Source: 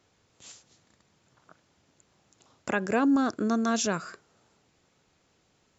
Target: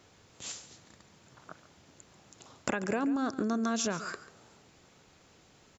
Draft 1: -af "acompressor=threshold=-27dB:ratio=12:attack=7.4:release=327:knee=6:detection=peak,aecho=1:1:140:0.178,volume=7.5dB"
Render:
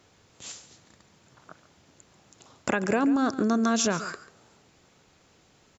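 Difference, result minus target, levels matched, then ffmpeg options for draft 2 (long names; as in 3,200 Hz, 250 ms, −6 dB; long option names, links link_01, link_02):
downward compressor: peak gain reduction −7 dB
-af "acompressor=threshold=-34.5dB:ratio=12:attack=7.4:release=327:knee=6:detection=peak,aecho=1:1:140:0.178,volume=7.5dB"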